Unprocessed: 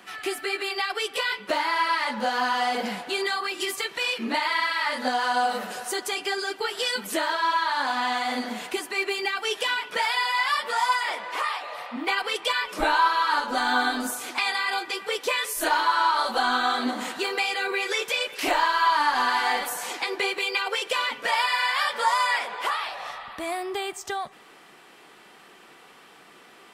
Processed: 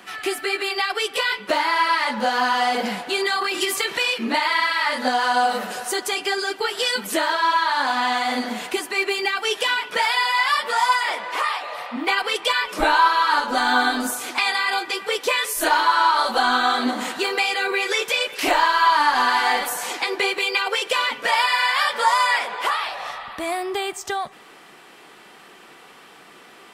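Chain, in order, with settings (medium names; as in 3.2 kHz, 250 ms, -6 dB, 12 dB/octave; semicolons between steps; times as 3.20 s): 3.32–4.02 s: transient shaper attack +3 dB, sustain +7 dB; trim +4.5 dB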